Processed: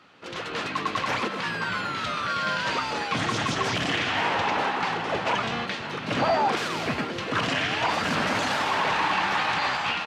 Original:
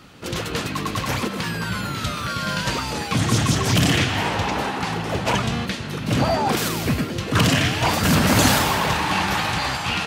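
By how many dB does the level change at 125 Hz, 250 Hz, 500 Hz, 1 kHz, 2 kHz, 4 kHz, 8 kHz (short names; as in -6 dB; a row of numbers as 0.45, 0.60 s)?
-14.0, -9.5, -3.5, -1.0, -1.5, -5.0, -13.0 dB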